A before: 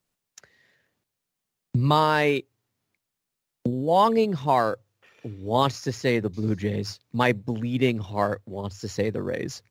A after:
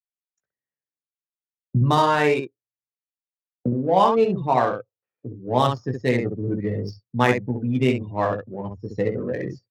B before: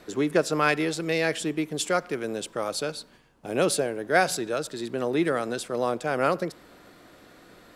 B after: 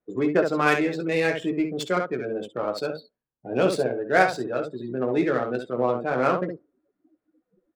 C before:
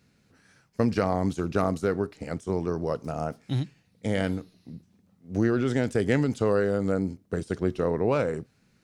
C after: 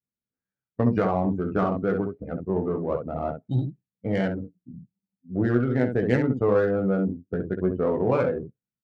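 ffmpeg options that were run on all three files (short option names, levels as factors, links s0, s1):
-af "aecho=1:1:16|67:0.596|0.596,afftdn=nr=34:nf=-35,adynamicsmooth=sensitivity=2.5:basefreq=2200"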